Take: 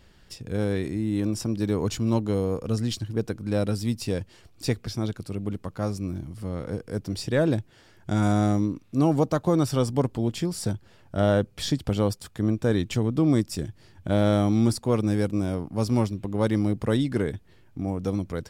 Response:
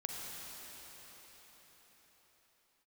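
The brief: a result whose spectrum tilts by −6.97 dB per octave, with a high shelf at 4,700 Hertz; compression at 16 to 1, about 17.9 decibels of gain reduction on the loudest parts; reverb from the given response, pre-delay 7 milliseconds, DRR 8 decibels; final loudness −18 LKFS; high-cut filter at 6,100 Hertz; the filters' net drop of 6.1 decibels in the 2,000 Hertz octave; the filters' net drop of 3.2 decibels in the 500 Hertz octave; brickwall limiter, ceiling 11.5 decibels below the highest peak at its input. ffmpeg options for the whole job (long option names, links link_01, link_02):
-filter_complex "[0:a]lowpass=6100,equalizer=frequency=500:width_type=o:gain=-3.5,equalizer=frequency=2000:width_type=o:gain=-7.5,highshelf=frequency=4700:gain=-4.5,acompressor=threshold=-36dB:ratio=16,alimiter=level_in=13.5dB:limit=-24dB:level=0:latency=1,volume=-13.5dB,asplit=2[link_01][link_02];[1:a]atrim=start_sample=2205,adelay=7[link_03];[link_02][link_03]afir=irnorm=-1:irlink=0,volume=-9.5dB[link_04];[link_01][link_04]amix=inputs=2:normalize=0,volume=28.5dB"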